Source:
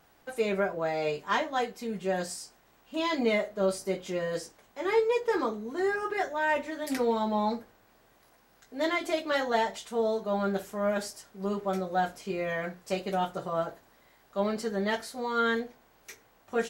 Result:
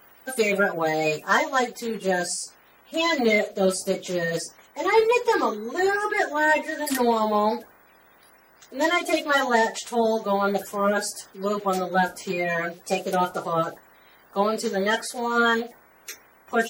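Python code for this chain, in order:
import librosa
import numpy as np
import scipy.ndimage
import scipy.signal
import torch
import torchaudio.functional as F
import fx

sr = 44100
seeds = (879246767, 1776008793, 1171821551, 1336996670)

y = fx.spec_quant(x, sr, step_db=30)
y = fx.high_shelf(y, sr, hz=6900.0, db=fx.steps((0.0, 12.0), (1.58, 5.5)))
y = fx.wow_flutter(y, sr, seeds[0], rate_hz=2.1, depth_cents=24.0)
y = fx.low_shelf(y, sr, hz=200.0, db=-8.0)
y = y * librosa.db_to_amplitude(8.0)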